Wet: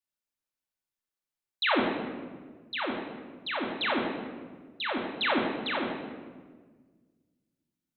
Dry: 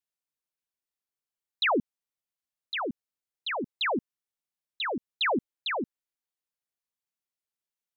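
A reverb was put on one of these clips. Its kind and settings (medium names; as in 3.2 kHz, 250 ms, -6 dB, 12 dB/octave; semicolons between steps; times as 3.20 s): simulated room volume 1500 m³, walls mixed, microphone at 2.5 m; trim -4 dB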